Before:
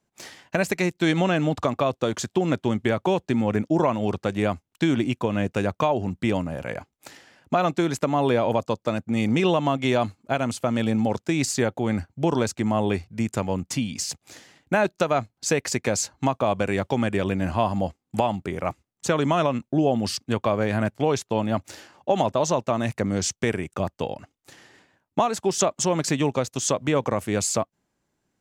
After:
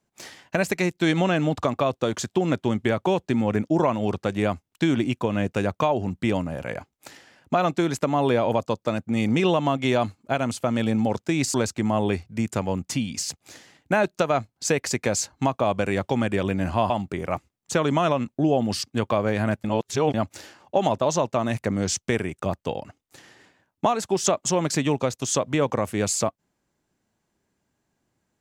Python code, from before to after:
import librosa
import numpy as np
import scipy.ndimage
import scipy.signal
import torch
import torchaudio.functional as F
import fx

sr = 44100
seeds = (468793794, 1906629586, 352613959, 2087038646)

y = fx.edit(x, sr, fx.cut(start_s=11.54, length_s=0.81),
    fx.cut(start_s=17.71, length_s=0.53),
    fx.reverse_span(start_s=20.98, length_s=0.5), tone=tone)